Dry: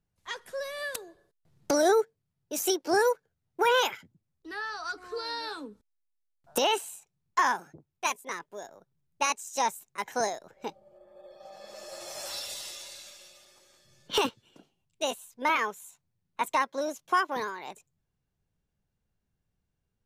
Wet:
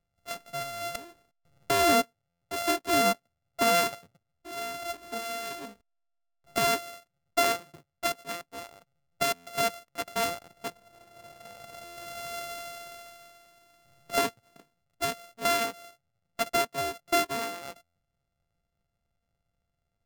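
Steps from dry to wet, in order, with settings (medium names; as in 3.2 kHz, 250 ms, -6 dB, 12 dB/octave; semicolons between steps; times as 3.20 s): sorted samples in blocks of 64 samples; buffer glitch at 2.29/9.34/11.84/17.83 s, samples 512, times 10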